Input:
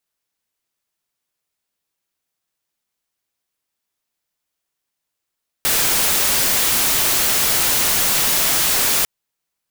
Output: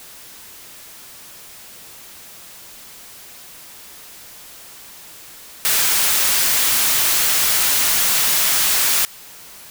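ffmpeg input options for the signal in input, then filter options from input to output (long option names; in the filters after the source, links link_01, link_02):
-f lavfi -i "anoisesrc=color=white:amplitude=0.245:duration=3.4:sample_rate=44100:seed=1"
-filter_complex "[0:a]aeval=exprs='val(0)+0.5*0.0211*sgn(val(0))':channel_layout=same,acrossover=split=910[link_01][link_02];[link_01]alimiter=level_in=6dB:limit=-24dB:level=0:latency=1:release=254,volume=-6dB[link_03];[link_03][link_02]amix=inputs=2:normalize=0"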